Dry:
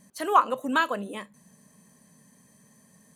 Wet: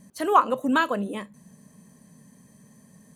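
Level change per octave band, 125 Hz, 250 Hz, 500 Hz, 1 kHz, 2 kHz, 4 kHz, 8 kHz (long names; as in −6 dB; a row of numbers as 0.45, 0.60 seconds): +7.0, +6.0, +3.5, +1.5, +0.5, 0.0, 0.0 decibels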